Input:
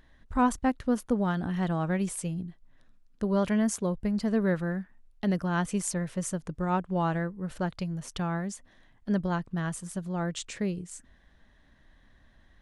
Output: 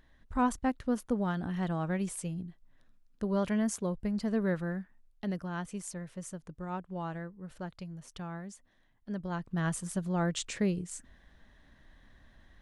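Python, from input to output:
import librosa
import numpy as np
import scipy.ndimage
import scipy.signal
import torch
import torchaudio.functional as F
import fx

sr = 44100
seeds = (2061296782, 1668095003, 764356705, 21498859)

y = fx.gain(x, sr, db=fx.line((4.77, -4.0), (5.71, -10.0), (9.17, -10.0), (9.67, 1.0)))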